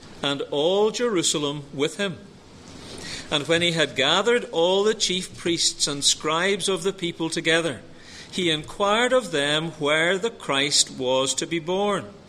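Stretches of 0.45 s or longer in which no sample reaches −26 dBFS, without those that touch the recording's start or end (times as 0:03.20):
0:02.12–0:02.98
0:07.74–0:08.35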